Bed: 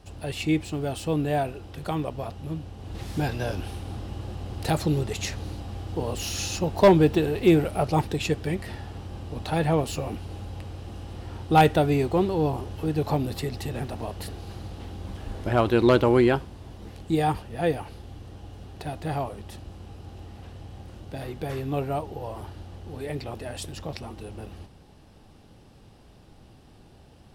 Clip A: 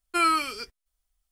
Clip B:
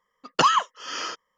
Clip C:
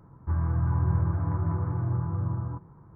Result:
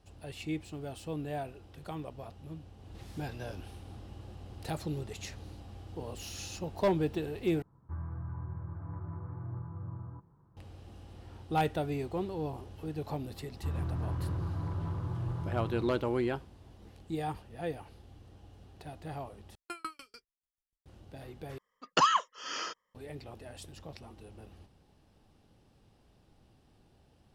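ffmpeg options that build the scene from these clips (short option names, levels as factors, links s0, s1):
-filter_complex "[3:a]asplit=2[s0][s1];[0:a]volume=0.251[s2];[s0]alimiter=limit=0.106:level=0:latency=1:release=439[s3];[s1]asoftclip=type=hard:threshold=0.0596[s4];[1:a]aeval=exprs='val(0)*pow(10,-40*if(lt(mod(6.8*n/s,1),2*abs(6.8)/1000),1-mod(6.8*n/s,1)/(2*abs(6.8)/1000),(mod(6.8*n/s,1)-2*abs(6.8)/1000)/(1-2*abs(6.8)/1000))/20)':c=same[s5];[s2]asplit=4[s6][s7][s8][s9];[s6]atrim=end=7.624[s10];[s3]atrim=end=2.95,asetpts=PTS-STARTPTS,volume=0.251[s11];[s7]atrim=start=10.566:end=19.554[s12];[s5]atrim=end=1.31,asetpts=PTS-STARTPTS,volume=0.316[s13];[s8]atrim=start=20.856:end=21.584[s14];[2:a]atrim=end=1.37,asetpts=PTS-STARTPTS,volume=0.501[s15];[s9]atrim=start=22.946[s16];[s4]atrim=end=2.95,asetpts=PTS-STARTPTS,volume=0.473,afade=t=in:d=0.004:c=hsin,afade=t=out:st=2.946:d=0.004:c=hsin,adelay=13360[s17];[s10][s11]acrossfade=d=0.004:c1=hsin:c2=hsin[s18];[s18][s12]acrossfade=d=0.004:c1=hsin:c2=hsin[s19];[s19][s13]acrossfade=d=0.004:c1=hsin:c2=hsin[s20];[s20][s14]acrossfade=d=0.004:c1=hsin:c2=hsin[s21];[s21][s15]acrossfade=d=0.004:c1=hsin:c2=hsin[s22];[s22][s16]acrossfade=d=0.004:c1=hsin:c2=hsin[s23];[s23][s17]amix=inputs=2:normalize=0"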